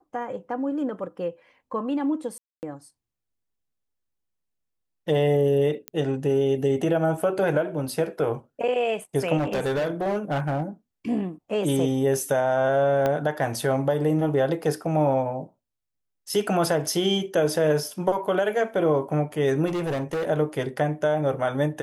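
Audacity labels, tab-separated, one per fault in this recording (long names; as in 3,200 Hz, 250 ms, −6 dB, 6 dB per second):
2.380000	2.630000	drop-out 249 ms
5.880000	5.880000	click −14 dBFS
9.370000	10.630000	clipping −21.5 dBFS
13.060000	13.060000	click −12 dBFS
14.640000	14.640000	drop-out 2.1 ms
19.660000	20.300000	clipping −24 dBFS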